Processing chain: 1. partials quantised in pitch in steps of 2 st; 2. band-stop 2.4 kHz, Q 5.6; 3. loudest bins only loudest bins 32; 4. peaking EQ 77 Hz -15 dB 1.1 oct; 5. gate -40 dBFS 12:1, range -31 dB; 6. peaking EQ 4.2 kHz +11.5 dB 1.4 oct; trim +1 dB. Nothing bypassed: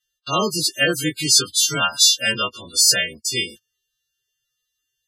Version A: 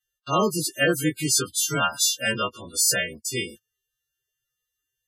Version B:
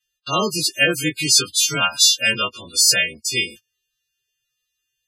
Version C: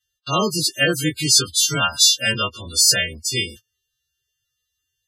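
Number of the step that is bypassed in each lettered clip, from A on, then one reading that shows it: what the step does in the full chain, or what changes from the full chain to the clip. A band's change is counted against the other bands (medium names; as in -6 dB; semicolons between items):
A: 6, 4 kHz band -9.0 dB; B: 2, 2 kHz band +2.5 dB; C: 4, 125 Hz band +4.5 dB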